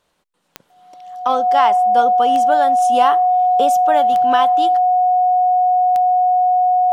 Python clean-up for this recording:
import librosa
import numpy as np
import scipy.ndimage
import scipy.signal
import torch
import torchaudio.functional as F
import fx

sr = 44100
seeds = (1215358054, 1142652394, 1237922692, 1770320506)

y = fx.fix_declick_ar(x, sr, threshold=10.0)
y = fx.notch(y, sr, hz=730.0, q=30.0)